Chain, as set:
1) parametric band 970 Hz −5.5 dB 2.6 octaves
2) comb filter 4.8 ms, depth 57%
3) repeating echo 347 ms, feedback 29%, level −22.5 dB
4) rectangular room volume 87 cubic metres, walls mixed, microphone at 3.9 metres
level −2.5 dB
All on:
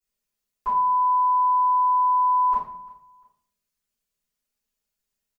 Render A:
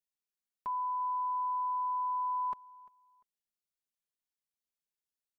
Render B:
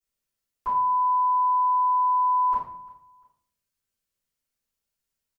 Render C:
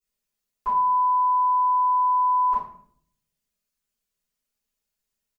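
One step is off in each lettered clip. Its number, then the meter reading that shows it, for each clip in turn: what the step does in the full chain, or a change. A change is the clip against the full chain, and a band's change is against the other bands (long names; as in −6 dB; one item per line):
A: 4, echo-to-direct ratio 12.0 dB to −22.0 dB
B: 2, change in integrated loudness −2.0 LU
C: 3, change in momentary loudness spread −2 LU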